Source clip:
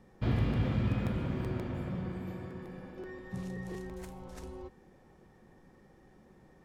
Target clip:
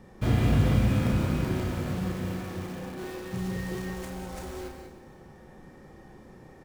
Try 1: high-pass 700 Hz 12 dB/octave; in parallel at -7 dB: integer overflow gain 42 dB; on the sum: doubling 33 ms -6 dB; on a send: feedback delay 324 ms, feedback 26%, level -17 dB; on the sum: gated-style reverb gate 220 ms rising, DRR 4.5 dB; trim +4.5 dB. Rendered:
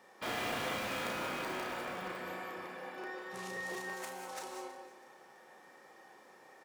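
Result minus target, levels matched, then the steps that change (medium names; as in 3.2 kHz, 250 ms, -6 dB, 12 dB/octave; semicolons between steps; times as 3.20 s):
500 Hz band +4.0 dB
remove: high-pass 700 Hz 12 dB/octave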